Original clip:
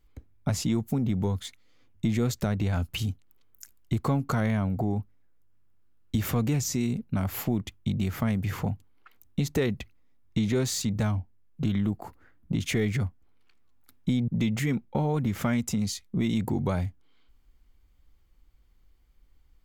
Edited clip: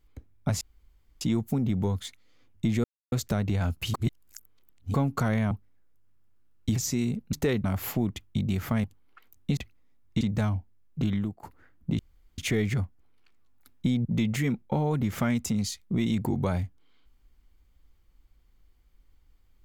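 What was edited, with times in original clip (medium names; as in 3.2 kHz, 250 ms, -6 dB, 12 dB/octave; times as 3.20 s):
0.61 s: insert room tone 0.60 s
2.24 s: insert silence 0.28 s
3.06–4.06 s: reverse
4.63–4.97 s: delete
6.22–6.58 s: delete
8.35–8.73 s: delete
9.46–9.77 s: move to 7.15 s
10.41–10.83 s: delete
11.62–12.05 s: fade out equal-power, to -18 dB
12.61 s: insert room tone 0.39 s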